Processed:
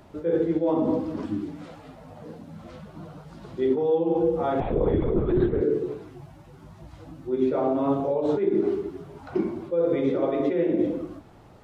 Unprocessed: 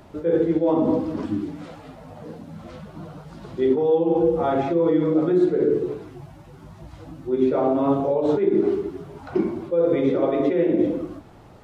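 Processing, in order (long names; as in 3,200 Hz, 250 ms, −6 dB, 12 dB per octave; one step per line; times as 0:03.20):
0:04.60–0:05.61: linear-prediction vocoder at 8 kHz whisper
level −3.5 dB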